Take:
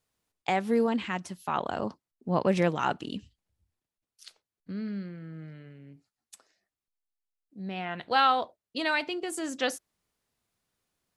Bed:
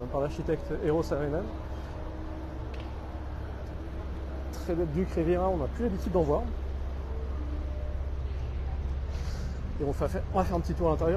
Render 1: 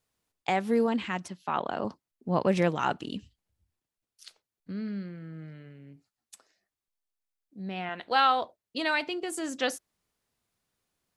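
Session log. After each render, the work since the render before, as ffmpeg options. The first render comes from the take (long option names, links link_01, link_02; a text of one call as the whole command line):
ffmpeg -i in.wav -filter_complex "[0:a]asettb=1/sr,asplit=3[link_01][link_02][link_03];[link_01]atrim=end=1.284[link_04];[link_02]atrim=start=1.28:end=1.85,asetpts=PTS-STARTPTS,afade=type=in:duration=0.004:curve=qsin,afade=type=out:start_time=0.566:duration=0.004:curve=qsin,highpass=140,lowpass=4800[link_05];[link_03]atrim=start=1.846[link_06];[link_04][link_05]acrossfade=duration=0.004:curve1=hsin:curve2=qsin[link_07];[link_07][link_06]acrossfade=duration=0.004:curve1=qsin:curve2=hsin,asettb=1/sr,asplit=3[link_08][link_09][link_10];[link_08]atrim=end=7.894[link_11];[link_09]atrim=start=7.89:end=8.42,asetpts=PTS-STARTPTS,afade=type=in:duration=0.004:curve=qsin,afade=type=out:start_time=0.526:duration=0.004:curve=qsin,equalizer=frequency=130:width_type=o:width=0.77:gain=-14.5[link_12];[link_10]atrim=start=8.416[link_13];[link_11][link_12]acrossfade=duration=0.004:curve1=hsin:curve2=qsin[link_14];[link_14][link_13]acrossfade=duration=0.004:curve1=qsin:curve2=hsin" out.wav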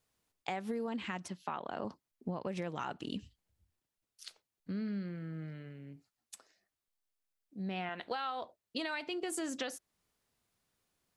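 ffmpeg -i in.wav -af "alimiter=limit=-22dB:level=0:latency=1:release=356,acompressor=threshold=-34dB:ratio=6" out.wav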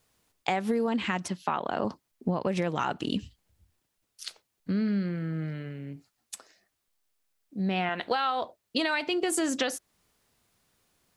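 ffmpeg -i in.wav -af "volume=10dB" out.wav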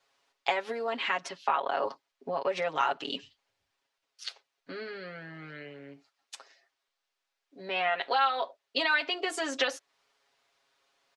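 ffmpeg -i in.wav -filter_complex "[0:a]acrossover=split=420 5900:gain=0.0708 1 0.0891[link_01][link_02][link_03];[link_01][link_02][link_03]amix=inputs=3:normalize=0,aecho=1:1:7.3:0.88" out.wav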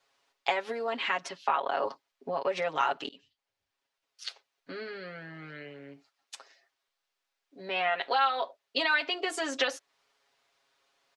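ffmpeg -i in.wav -filter_complex "[0:a]asplit=2[link_01][link_02];[link_01]atrim=end=3.09,asetpts=PTS-STARTPTS,afade=type=out:start_time=3.086:duration=0.004:curve=hsin:silence=0.0794328[link_03];[link_02]atrim=start=3.09,asetpts=PTS-STARTPTS,afade=type=in:duration=1.18:silence=0.0794328[link_04];[link_03][link_04]concat=n=2:v=0:a=1" out.wav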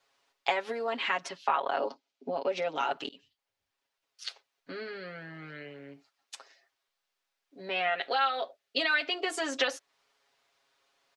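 ffmpeg -i in.wav -filter_complex "[0:a]asettb=1/sr,asplit=3[link_01][link_02][link_03];[link_01]atrim=end=1.784[link_04];[link_02]atrim=start=1.78:end=2.91,asetpts=PTS-STARTPTS,afade=type=in:duration=0.004:curve=qsin,afade=type=out:start_time=1.126:duration=0.004:curve=qsin,highpass=180,equalizer=frequency=260:width_type=q:width=4:gain=8,equalizer=frequency=1100:width_type=q:width=4:gain=-9,equalizer=frequency=1800:width_type=q:width=4:gain=-8,lowpass=frequency=7100:width=0.5412,lowpass=frequency=7100:width=1.3066[link_05];[link_03]atrim=start=2.906[link_06];[link_04][link_05]acrossfade=duration=0.004:curve1=hsin:curve2=qsin[link_07];[link_07][link_06]acrossfade=duration=0.004:curve1=qsin:curve2=hsin,asettb=1/sr,asplit=3[link_08][link_09][link_10];[link_08]atrim=end=7.734[link_11];[link_09]atrim=start=7.73:end=9.12,asetpts=PTS-STARTPTS,afade=type=in:duration=0.004:curve=qsin,afade=type=out:start_time=1.386:duration=0.004:curve=qsin,equalizer=frequency=980:width=5.6:gain=-12.5[link_12];[link_10]atrim=start=9.116[link_13];[link_11][link_12]acrossfade=duration=0.004:curve1=hsin:curve2=qsin[link_14];[link_14][link_13]acrossfade=duration=0.004:curve1=qsin:curve2=hsin" out.wav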